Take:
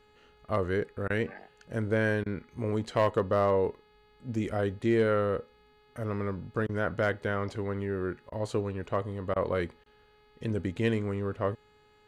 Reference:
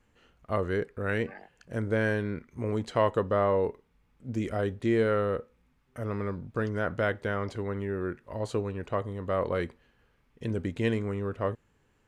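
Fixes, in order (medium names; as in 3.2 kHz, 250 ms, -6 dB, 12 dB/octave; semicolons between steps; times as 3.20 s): clip repair -17 dBFS; de-hum 421.3 Hz, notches 11; interpolate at 1.08/2.24/6.67/8.30/9.34/9.84 s, 19 ms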